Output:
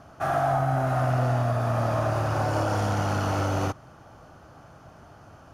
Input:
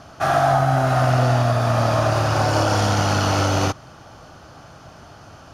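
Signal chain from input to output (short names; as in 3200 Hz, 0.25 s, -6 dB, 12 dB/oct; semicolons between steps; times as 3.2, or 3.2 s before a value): in parallel at -9 dB: hard clip -18.5 dBFS, distortion -10 dB; on the sum: bell 4400 Hz -9 dB 1.7 oct; gain -8 dB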